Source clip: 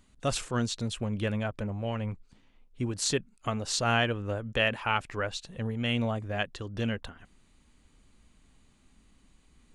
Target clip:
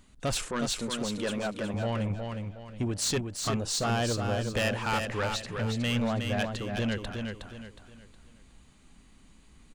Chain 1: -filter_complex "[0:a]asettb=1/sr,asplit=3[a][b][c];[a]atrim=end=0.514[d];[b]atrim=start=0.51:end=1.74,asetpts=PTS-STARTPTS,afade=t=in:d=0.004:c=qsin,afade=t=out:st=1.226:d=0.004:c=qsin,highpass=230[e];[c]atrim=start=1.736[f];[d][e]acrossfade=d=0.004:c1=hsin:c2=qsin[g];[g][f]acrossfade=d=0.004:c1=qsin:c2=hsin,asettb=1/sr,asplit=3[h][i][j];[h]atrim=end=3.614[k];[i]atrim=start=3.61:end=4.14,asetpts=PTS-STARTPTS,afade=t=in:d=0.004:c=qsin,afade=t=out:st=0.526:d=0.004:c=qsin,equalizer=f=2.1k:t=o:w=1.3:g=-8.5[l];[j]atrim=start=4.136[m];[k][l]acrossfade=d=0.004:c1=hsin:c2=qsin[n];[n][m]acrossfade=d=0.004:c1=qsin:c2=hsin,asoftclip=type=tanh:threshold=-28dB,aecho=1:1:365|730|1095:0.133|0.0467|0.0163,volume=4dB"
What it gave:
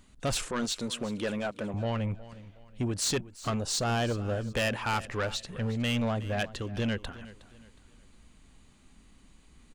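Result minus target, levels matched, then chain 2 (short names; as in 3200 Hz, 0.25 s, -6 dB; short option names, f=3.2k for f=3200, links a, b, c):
echo-to-direct -12 dB
-filter_complex "[0:a]asettb=1/sr,asplit=3[a][b][c];[a]atrim=end=0.514[d];[b]atrim=start=0.51:end=1.74,asetpts=PTS-STARTPTS,afade=t=in:d=0.004:c=qsin,afade=t=out:st=1.226:d=0.004:c=qsin,highpass=230[e];[c]atrim=start=1.736[f];[d][e]acrossfade=d=0.004:c1=hsin:c2=qsin[g];[g][f]acrossfade=d=0.004:c1=qsin:c2=hsin,asettb=1/sr,asplit=3[h][i][j];[h]atrim=end=3.614[k];[i]atrim=start=3.61:end=4.14,asetpts=PTS-STARTPTS,afade=t=in:d=0.004:c=qsin,afade=t=out:st=0.526:d=0.004:c=qsin,equalizer=f=2.1k:t=o:w=1.3:g=-8.5[l];[j]atrim=start=4.136[m];[k][l]acrossfade=d=0.004:c1=hsin:c2=qsin[n];[n][m]acrossfade=d=0.004:c1=qsin:c2=hsin,asoftclip=type=tanh:threshold=-28dB,aecho=1:1:365|730|1095|1460:0.531|0.186|0.065|0.0228,volume=4dB"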